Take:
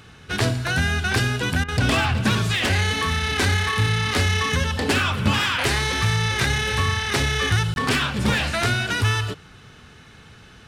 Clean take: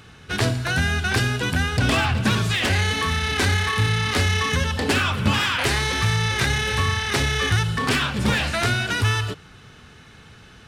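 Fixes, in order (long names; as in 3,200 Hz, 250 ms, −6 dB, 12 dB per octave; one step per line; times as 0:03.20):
repair the gap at 0:07.74, 21 ms
repair the gap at 0:01.64, 42 ms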